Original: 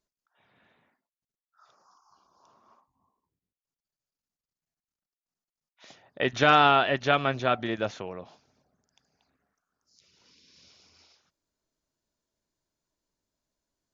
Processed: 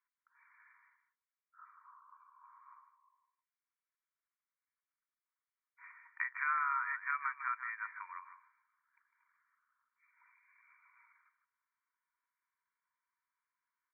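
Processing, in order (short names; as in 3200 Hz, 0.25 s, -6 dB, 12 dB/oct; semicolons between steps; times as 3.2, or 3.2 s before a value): compressor 5:1, threshold -32 dBFS, peak gain reduction 15.5 dB; brick-wall FIR band-pass 920–2400 Hz; echo 0.153 s -10 dB; gain +3.5 dB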